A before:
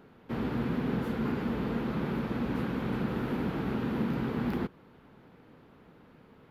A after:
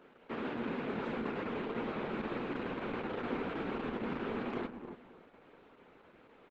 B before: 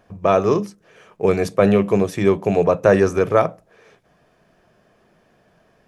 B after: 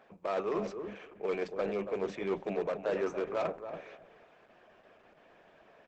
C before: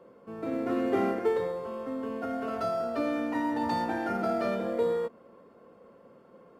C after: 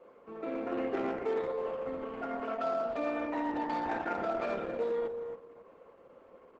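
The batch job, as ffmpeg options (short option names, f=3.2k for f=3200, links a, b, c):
-filter_complex "[0:a]superequalizer=12b=1.58:13b=1.41,areverse,acompressor=threshold=-26dB:ratio=8,areverse,bass=f=250:g=-13,treble=f=4k:g=-14,volume=26.5dB,asoftclip=hard,volume=-26.5dB,highpass=f=140:w=0.5412,highpass=f=140:w=1.3066,asplit=2[a][b];[b]adelay=280,lowpass=f=890:p=1,volume=-6.5dB,asplit=2[c][d];[d]adelay=280,lowpass=f=890:p=1,volume=0.22,asplit=2[e][f];[f]adelay=280,lowpass=f=890:p=1,volume=0.22[g];[c][e][g]amix=inputs=3:normalize=0[h];[a][h]amix=inputs=2:normalize=0" -ar 48000 -c:a libopus -b:a 10k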